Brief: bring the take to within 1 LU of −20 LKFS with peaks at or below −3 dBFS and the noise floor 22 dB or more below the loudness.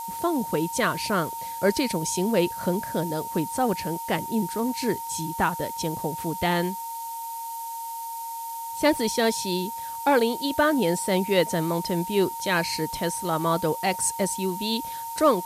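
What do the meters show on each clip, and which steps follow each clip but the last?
interfering tone 920 Hz; level of the tone −32 dBFS; background noise floor −34 dBFS; target noise floor −48 dBFS; integrated loudness −26.0 LKFS; sample peak −7.5 dBFS; target loudness −20.0 LKFS
→ notch filter 920 Hz, Q 30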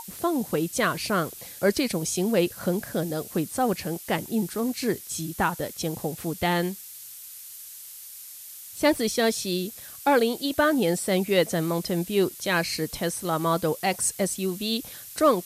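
interfering tone none found; background noise floor −43 dBFS; target noise floor −48 dBFS
→ noise reduction from a noise print 6 dB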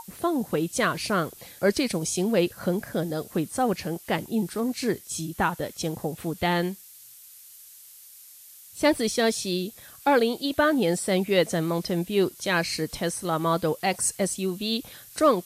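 background noise floor −49 dBFS; integrated loudness −26.0 LKFS; sample peak −8.0 dBFS; target loudness −20.0 LKFS
→ level +6 dB
brickwall limiter −3 dBFS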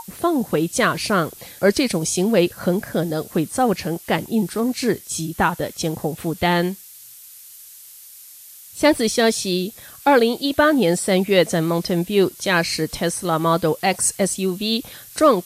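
integrated loudness −20.0 LKFS; sample peak −3.0 dBFS; background noise floor −43 dBFS

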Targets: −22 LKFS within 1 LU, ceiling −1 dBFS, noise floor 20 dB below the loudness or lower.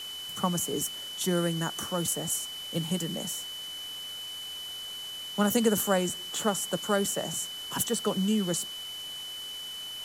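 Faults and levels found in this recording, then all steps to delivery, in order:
interfering tone 3,000 Hz; level of the tone −37 dBFS; background noise floor −39 dBFS; target noise floor −50 dBFS; integrated loudness −30.0 LKFS; sample peak −11.0 dBFS; target loudness −22.0 LKFS
→ notch filter 3,000 Hz, Q 30
noise reduction from a noise print 11 dB
level +8 dB

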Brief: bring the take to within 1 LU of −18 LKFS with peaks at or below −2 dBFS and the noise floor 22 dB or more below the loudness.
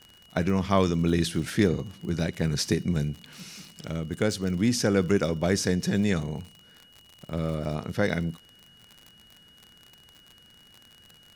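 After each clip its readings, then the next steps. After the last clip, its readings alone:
crackle rate 54 per second; interfering tone 2,900 Hz; level of the tone −54 dBFS; integrated loudness −27.0 LKFS; sample peak −7.5 dBFS; target loudness −18.0 LKFS
→ click removal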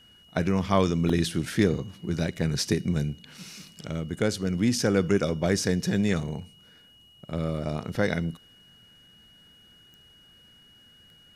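crackle rate 0.79 per second; interfering tone 2,900 Hz; level of the tone −54 dBFS
→ notch filter 2,900 Hz, Q 30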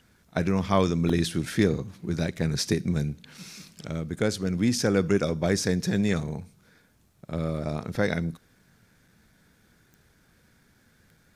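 interfering tone none found; integrated loudness −27.0 LKFS; sample peak −7.5 dBFS; target loudness −18.0 LKFS
→ level +9 dB
brickwall limiter −2 dBFS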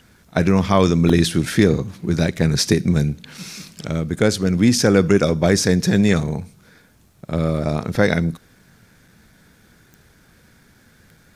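integrated loudness −18.5 LKFS; sample peak −2.0 dBFS; background noise floor −54 dBFS

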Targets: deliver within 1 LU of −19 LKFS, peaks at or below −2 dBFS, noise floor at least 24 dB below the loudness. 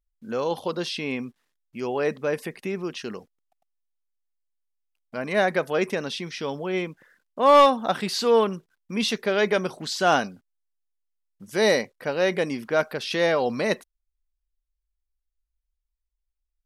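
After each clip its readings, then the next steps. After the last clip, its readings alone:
integrated loudness −24.0 LKFS; sample peak −9.0 dBFS; target loudness −19.0 LKFS
→ level +5 dB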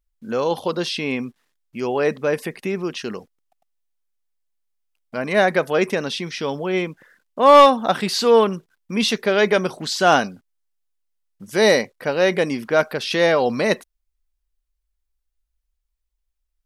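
integrated loudness −19.0 LKFS; sample peak −4.0 dBFS; background noise floor −76 dBFS

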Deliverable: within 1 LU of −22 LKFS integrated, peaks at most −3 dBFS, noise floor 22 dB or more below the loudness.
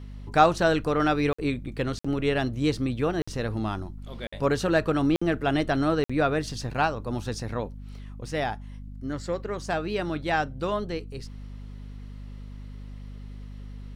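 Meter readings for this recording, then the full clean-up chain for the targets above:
number of dropouts 6; longest dropout 55 ms; mains hum 50 Hz; hum harmonics up to 250 Hz; level of the hum −37 dBFS; integrated loudness −27.0 LKFS; sample peak −6.0 dBFS; target loudness −22.0 LKFS
→ repair the gap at 0:01.33/0:01.99/0:03.22/0:04.27/0:05.16/0:06.04, 55 ms
hum removal 50 Hz, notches 5
level +5 dB
brickwall limiter −3 dBFS

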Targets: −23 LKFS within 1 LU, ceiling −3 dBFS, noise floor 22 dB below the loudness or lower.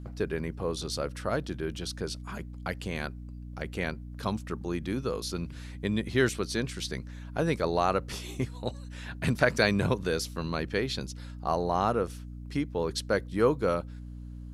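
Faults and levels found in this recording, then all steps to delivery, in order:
mains hum 60 Hz; hum harmonics up to 300 Hz; level of the hum −39 dBFS; integrated loudness −31.0 LKFS; sample peak −8.5 dBFS; target loudness −23.0 LKFS
→ hum removal 60 Hz, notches 5
level +8 dB
brickwall limiter −3 dBFS

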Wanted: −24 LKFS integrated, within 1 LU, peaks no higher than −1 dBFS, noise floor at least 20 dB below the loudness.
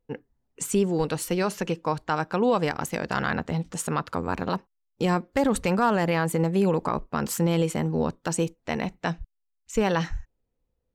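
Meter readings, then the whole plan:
integrated loudness −26.5 LKFS; sample peak −12.5 dBFS; target loudness −24.0 LKFS
→ level +2.5 dB

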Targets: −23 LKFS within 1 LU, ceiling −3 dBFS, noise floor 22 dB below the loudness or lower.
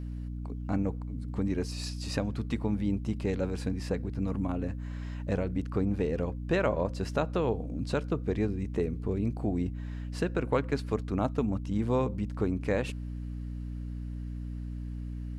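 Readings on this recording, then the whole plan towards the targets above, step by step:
mains hum 60 Hz; hum harmonics up to 300 Hz; level of the hum −34 dBFS; integrated loudness −32.5 LKFS; sample peak −13.0 dBFS; target loudness −23.0 LKFS
→ mains-hum notches 60/120/180/240/300 Hz
level +9.5 dB

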